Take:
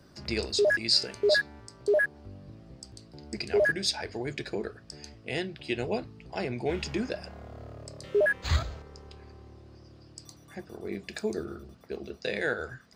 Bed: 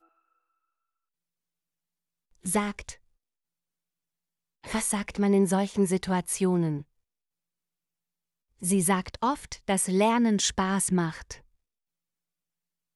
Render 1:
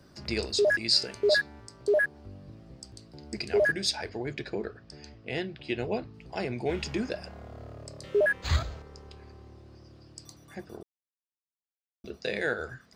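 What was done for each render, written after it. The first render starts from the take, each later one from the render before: 4.09–6.14 air absorption 94 m; 10.83–12.04 mute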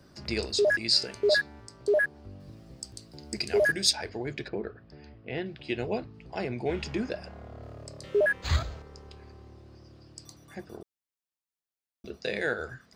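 2.4–3.93 high shelf 5700 Hz +11 dB; 4.48–5.46 air absorption 270 m; 6.05–7.63 high shelf 5700 Hz -7.5 dB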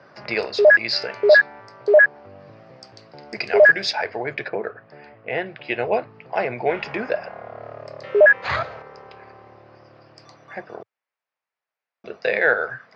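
elliptic band-pass 110–5200 Hz, stop band 40 dB; band shelf 1100 Hz +13.5 dB 2.8 oct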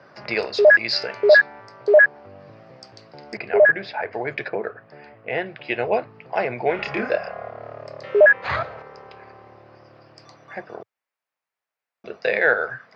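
3.37–4.13 air absorption 440 m; 6.76–7.5 doubler 29 ms -3 dB; 8.25–8.77 LPF 4300 Hz -> 2500 Hz 6 dB/oct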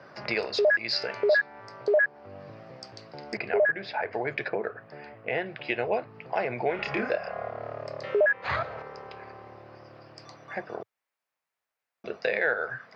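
compressor 2:1, threshold -28 dBFS, peak gain reduction 11 dB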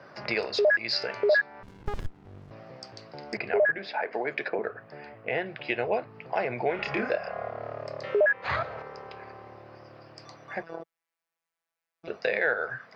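1.63–2.51 running maximum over 65 samples; 3.78–4.59 HPF 180 Hz 24 dB/oct; 10.63–12.08 robotiser 165 Hz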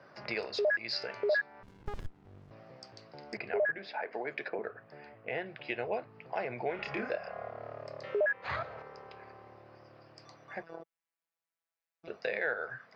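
gain -7 dB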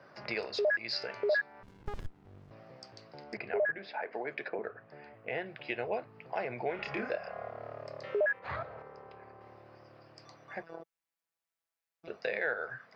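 3.23–5.14 air absorption 75 m; 8.39–9.41 high shelf 2300 Hz -11 dB

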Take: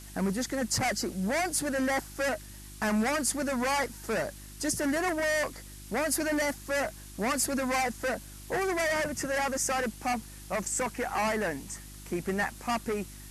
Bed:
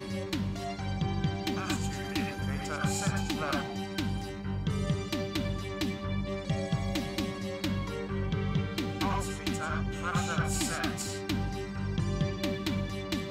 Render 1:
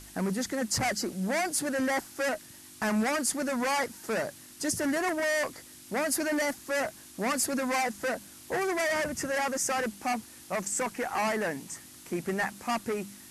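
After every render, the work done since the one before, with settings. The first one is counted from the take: de-hum 50 Hz, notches 4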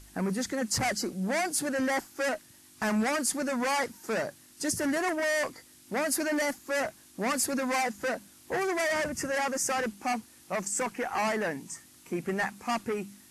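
noise print and reduce 6 dB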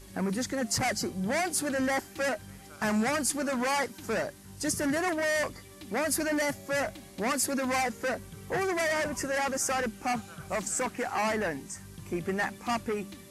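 add bed -15 dB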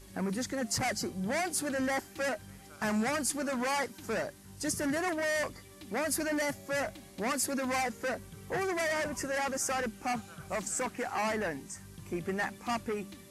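gain -3 dB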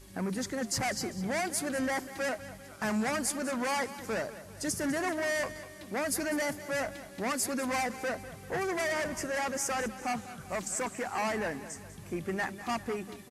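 feedback echo 0.198 s, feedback 49%, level -14.5 dB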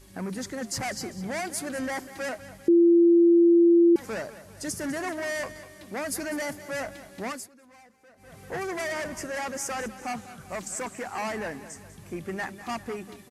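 2.68–3.96 bleep 341 Hz -14 dBFS; 7.25–8.4 dip -23 dB, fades 0.24 s

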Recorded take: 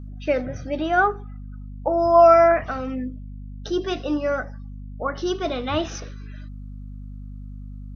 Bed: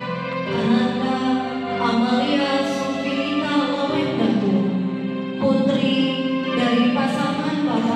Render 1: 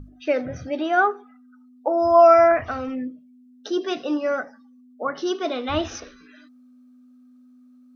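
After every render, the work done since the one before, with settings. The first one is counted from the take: notches 50/100/150/200 Hz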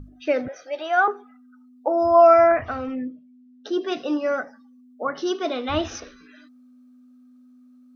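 0.48–1.08 HPF 480 Hz 24 dB/oct; 2.03–3.92 air absorption 110 m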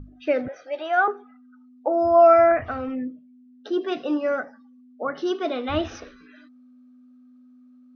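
Bessel low-pass 3300 Hz, order 2; dynamic EQ 990 Hz, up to -6 dB, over -38 dBFS, Q 4.3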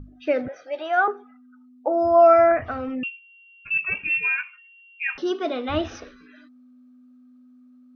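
3.03–5.18 inverted band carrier 3000 Hz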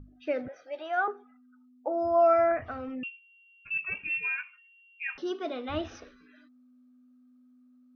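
gain -8 dB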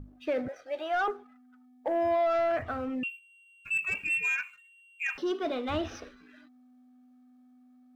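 limiter -22 dBFS, peak gain reduction 8 dB; sample leveller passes 1

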